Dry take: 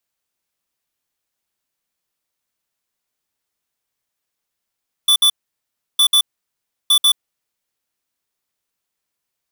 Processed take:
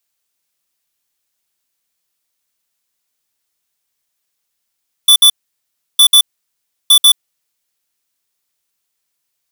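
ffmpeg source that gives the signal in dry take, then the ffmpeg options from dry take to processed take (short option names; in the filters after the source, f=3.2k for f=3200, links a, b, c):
-f lavfi -i "aevalsrc='0.251*(2*lt(mod(3480*t,1),0.5)-1)*clip(min(mod(mod(t,0.91),0.14),0.08-mod(mod(t,0.91),0.14))/0.005,0,1)*lt(mod(t,0.91),0.28)':d=2.73:s=44100"
-af "highshelf=f=2.3k:g=8"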